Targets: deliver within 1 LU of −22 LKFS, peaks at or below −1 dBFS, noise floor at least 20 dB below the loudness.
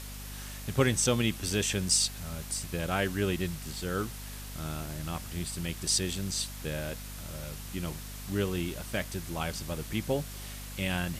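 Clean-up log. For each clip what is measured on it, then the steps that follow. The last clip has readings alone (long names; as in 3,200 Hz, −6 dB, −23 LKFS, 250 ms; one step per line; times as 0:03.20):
mains hum 50 Hz; hum harmonics up to 250 Hz; level of the hum −40 dBFS; background noise floor −42 dBFS; target noise floor −52 dBFS; integrated loudness −32.0 LKFS; sample peak −12.5 dBFS; target loudness −22.0 LKFS
→ hum removal 50 Hz, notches 5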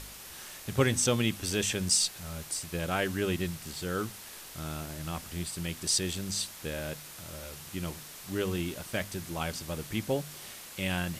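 mains hum none found; background noise floor −47 dBFS; target noise floor −52 dBFS
→ broadband denoise 6 dB, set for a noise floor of −47 dBFS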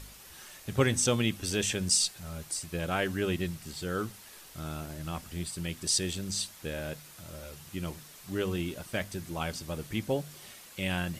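background noise floor −51 dBFS; target noise floor −52 dBFS
→ broadband denoise 6 dB, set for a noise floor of −51 dBFS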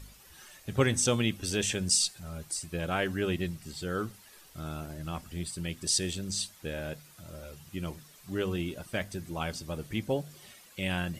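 background noise floor −56 dBFS; integrated loudness −32.0 LKFS; sample peak −12.5 dBFS; target loudness −22.0 LKFS
→ level +10 dB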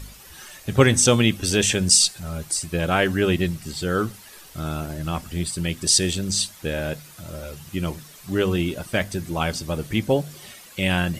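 integrated loudness −22.0 LKFS; sample peak −2.5 dBFS; background noise floor −46 dBFS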